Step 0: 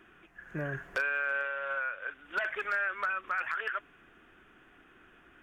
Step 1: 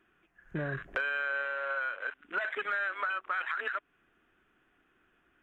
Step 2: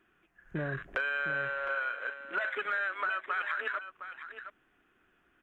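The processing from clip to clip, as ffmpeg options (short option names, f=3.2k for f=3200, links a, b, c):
-af "afwtdn=0.00708,acompressor=threshold=-40dB:ratio=2,volume=5.5dB"
-af "aecho=1:1:712:0.282"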